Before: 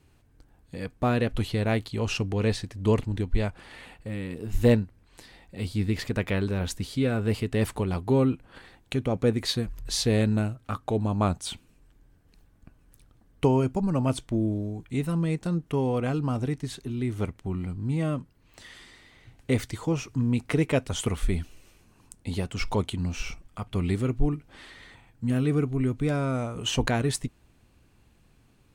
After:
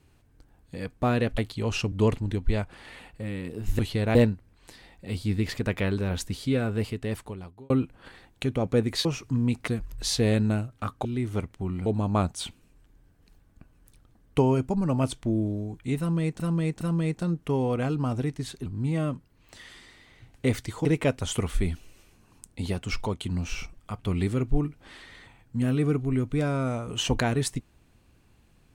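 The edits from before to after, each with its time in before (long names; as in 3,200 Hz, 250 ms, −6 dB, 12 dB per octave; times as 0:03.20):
0:01.38–0:01.74: move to 0:04.65
0:02.28–0:02.78: remove
0:07.04–0:08.20: fade out
0:15.05–0:15.46: repeat, 3 plays
0:16.90–0:17.71: move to 0:10.92
0:19.90–0:20.53: move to 0:09.55
0:22.60–0:22.89: fade out, to −7.5 dB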